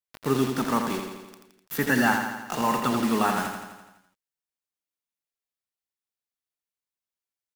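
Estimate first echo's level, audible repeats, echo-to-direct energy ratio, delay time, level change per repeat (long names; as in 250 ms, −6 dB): −6.0 dB, 7, −4.0 dB, 84 ms, −4.5 dB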